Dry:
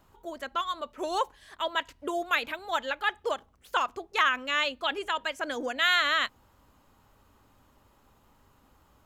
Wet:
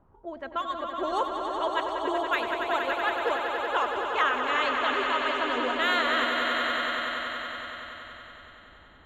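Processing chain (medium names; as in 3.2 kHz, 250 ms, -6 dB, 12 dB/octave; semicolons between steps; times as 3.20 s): level-controlled noise filter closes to 1.2 kHz, open at -25 dBFS; treble shelf 2 kHz -9 dB; echo with a slow build-up 94 ms, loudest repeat 5, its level -7.5 dB; trim +1.5 dB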